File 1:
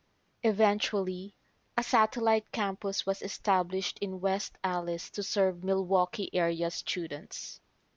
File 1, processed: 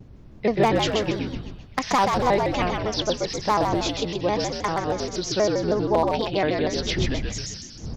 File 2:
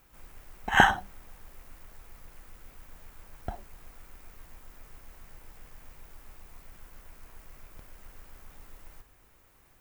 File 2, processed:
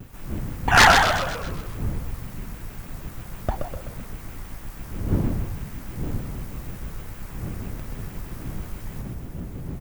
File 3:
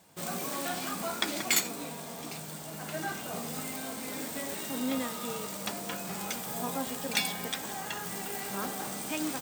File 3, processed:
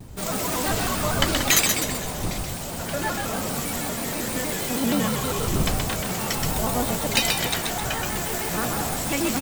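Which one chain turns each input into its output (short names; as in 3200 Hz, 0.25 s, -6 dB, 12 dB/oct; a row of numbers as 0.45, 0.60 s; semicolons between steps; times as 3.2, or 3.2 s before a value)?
wind noise 160 Hz -43 dBFS; wavefolder -16 dBFS; on a send: frequency-shifting echo 0.128 s, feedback 54%, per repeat -63 Hz, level -4 dB; on the sum: shaped vibrato square 6.3 Hz, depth 160 cents; match loudness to -24 LUFS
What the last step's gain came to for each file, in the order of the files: +5.0, +10.0, +7.5 dB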